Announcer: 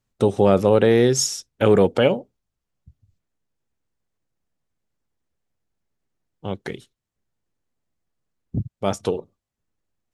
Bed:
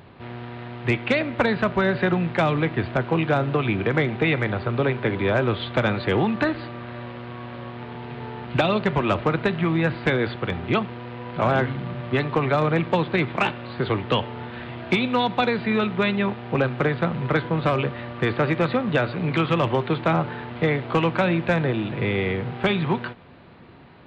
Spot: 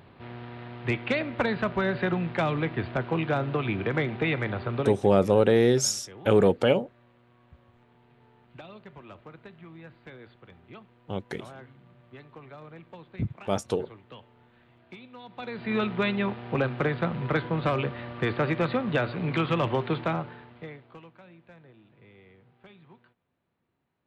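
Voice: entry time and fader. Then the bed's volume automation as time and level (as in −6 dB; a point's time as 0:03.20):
4.65 s, −4.5 dB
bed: 0:04.80 −5.5 dB
0:05.07 −25 dB
0:15.21 −25 dB
0:15.76 −4.5 dB
0:19.98 −4.5 dB
0:21.16 −31 dB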